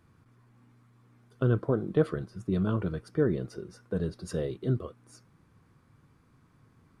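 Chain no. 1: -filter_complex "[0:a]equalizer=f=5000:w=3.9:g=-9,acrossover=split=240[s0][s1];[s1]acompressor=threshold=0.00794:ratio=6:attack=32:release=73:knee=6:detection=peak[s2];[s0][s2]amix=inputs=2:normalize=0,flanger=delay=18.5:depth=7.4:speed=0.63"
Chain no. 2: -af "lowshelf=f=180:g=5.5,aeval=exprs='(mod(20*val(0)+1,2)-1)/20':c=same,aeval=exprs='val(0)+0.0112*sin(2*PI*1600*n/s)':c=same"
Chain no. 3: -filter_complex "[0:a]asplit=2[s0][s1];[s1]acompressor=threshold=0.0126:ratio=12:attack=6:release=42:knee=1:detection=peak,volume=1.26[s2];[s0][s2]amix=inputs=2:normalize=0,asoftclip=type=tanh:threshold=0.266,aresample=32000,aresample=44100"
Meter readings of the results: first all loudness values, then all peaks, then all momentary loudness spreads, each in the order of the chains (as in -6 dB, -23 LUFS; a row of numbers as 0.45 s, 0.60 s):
-37.5 LUFS, -34.5 LUFS, -29.0 LUFS; -20.5 dBFS, -24.5 dBFS, -13.5 dBFS; 8 LU, 9 LU, 7 LU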